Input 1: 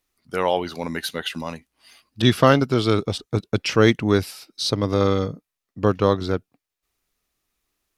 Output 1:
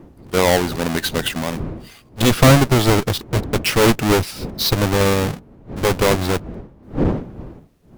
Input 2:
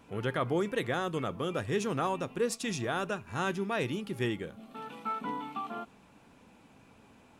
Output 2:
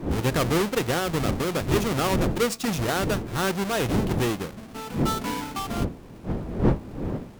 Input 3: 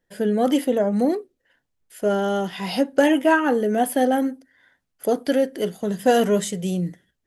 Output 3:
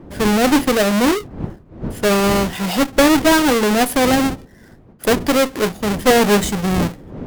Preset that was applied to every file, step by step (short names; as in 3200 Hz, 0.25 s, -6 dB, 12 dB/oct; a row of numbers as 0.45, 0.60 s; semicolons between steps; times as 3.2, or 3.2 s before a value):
half-waves squared off; wind noise 270 Hz -32 dBFS; added harmonics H 4 -11 dB, 5 -15 dB, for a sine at 0 dBFS; gain -3 dB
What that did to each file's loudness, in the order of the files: +3.5, +7.5, +5.5 LU